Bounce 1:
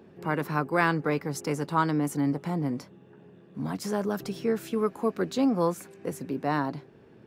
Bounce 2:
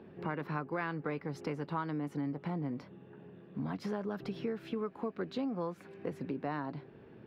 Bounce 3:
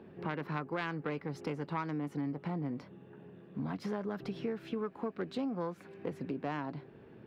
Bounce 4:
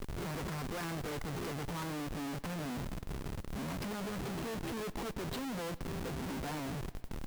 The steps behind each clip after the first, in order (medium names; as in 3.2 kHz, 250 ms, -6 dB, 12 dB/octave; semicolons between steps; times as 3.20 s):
distance through air 370 m; compression 5:1, threshold -34 dBFS, peak gain reduction 13 dB; treble shelf 2.8 kHz +9.5 dB
self-modulated delay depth 0.094 ms
Schmitt trigger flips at -48 dBFS; modulation noise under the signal 24 dB; bucket-brigade echo 109 ms, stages 4096, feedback 73%, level -22 dB